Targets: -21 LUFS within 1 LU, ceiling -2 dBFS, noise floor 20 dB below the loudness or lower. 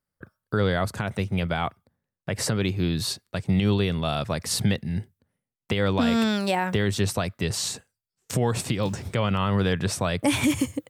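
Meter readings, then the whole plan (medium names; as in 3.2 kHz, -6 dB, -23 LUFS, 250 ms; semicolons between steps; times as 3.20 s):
loudness -25.5 LUFS; peak level -12.0 dBFS; loudness target -21.0 LUFS
-> trim +4.5 dB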